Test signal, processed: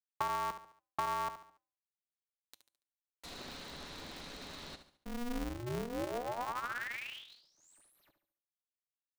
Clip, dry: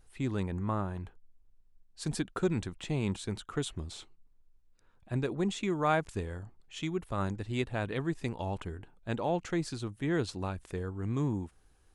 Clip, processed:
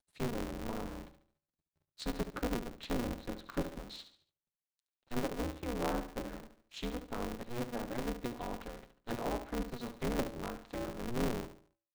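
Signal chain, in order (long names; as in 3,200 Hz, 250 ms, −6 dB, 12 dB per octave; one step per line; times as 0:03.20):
dead-zone distortion −54.5 dBFS
parametric band 4,000 Hz +12.5 dB 0.23 octaves
tuned comb filter 450 Hz, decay 0.51 s, mix 50%
treble cut that deepens with the level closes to 700 Hz, closed at −34.5 dBFS
high-pass filter 45 Hz 12 dB per octave
comb filter 7 ms, depth 48%
on a send: repeating echo 71 ms, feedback 39%, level −10.5 dB
on the sum: ring modulator with a square carrier 120 Hz
level +1 dB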